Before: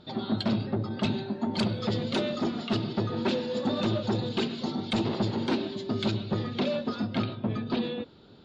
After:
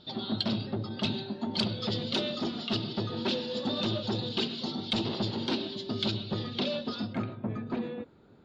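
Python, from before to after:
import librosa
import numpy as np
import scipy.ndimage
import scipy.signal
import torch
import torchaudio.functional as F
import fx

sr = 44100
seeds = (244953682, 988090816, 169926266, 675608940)

y = fx.band_shelf(x, sr, hz=4000.0, db=fx.steps((0.0, 8.0), (7.12, -11.0)), octaves=1.2)
y = F.gain(torch.from_numpy(y), -4.0).numpy()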